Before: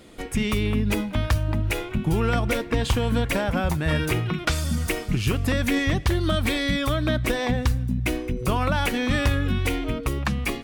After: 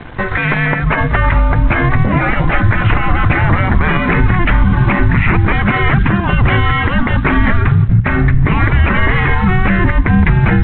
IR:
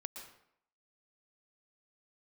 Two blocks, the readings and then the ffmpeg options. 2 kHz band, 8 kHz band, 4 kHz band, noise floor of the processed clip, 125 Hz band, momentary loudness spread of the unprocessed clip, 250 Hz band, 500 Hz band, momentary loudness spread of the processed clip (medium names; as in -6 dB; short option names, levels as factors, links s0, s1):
+14.0 dB, under -40 dB, +2.0 dB, -17 dBFS, +13.0 dB, 4 LU, +9.5 dB, +6.0 dB, 2 LU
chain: -af "highpass=f=350:t=q:w=0.5412,highpass=f=350:t=q:w=1.307,lowpass=f=2300:t=q:w=0.5176,lowpass=f=2300:t=q:w=0.7071,lowpass=f=2300:t=q:w=1.932,afreqshift=-360,aresample=8000,aeval=exprs='sgn(val(0))*max(abs(val(0))-0.0015,0)':c=same,aresample=44100,afftfilt=real='re*lt(hypot(re,im),0.0794)':imag='im*lt(hypot(re,im),0.0794)':win_size=1024:overlap=0.75,asubboost=boost=9.5:cutoff=170,areverse,acompressor=mode=upward:threshold=0.00794:ratio=2.5,areverse,bandreject=f=60:t=h:w=6,bandreject=f=120:t=h:w=6,bandreject=f=180:t=h:w=6,alimiter=level_in=22.4:limit=0.891:release=50:level=0:latency=1,volume=0.891" -ar 44100 -c:a libvorbis -b:a 64k